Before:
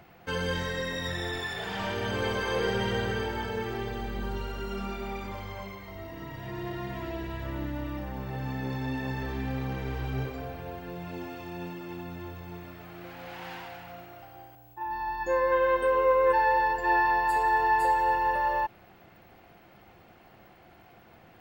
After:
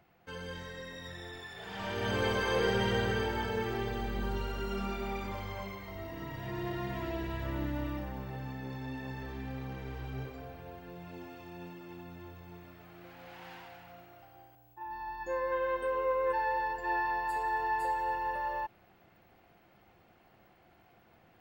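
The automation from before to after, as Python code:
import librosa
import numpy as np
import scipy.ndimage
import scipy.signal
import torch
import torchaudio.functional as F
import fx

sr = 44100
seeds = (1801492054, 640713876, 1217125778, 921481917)

y = fx.gain(x, sr, db=fx.line((1.52, -12.0), (2.1, -1.0), (7.85, -1.0), (8.58, -8.0)))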